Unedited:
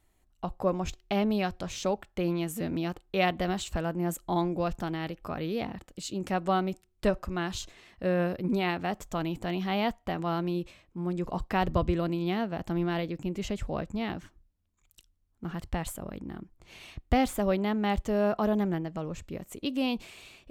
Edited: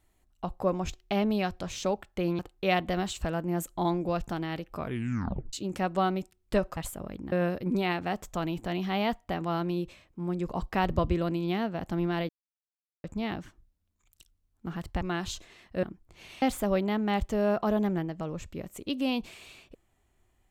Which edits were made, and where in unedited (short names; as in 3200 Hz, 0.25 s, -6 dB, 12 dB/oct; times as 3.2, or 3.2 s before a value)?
2.39–2.9 cut
5.28 tape stop 0.76 s
7.28–8.1 swap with 15.79–16.34
13.07–13.82 mute
16.93–17.18 cut